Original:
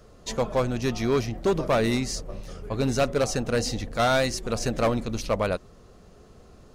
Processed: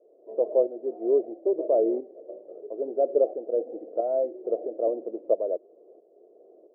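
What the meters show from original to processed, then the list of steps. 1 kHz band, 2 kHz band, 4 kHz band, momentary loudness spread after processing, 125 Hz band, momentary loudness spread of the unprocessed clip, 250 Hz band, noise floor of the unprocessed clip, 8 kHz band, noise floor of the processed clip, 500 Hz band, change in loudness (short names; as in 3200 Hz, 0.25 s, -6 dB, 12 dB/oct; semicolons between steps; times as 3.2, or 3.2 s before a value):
-8.5 dB, under -40 dB, under -40 dB, 11 LU, under -40 dB, 9 LU, -6.5 dB, -52 dBFS, under -40 dB, -58 dBFS, +2.0 dB, -1.0 dB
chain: tremolo saw up 1.5 Hz, depth 60%; Chebyshev band-pass 330–660 Hz, order 3; gain +5.5 dB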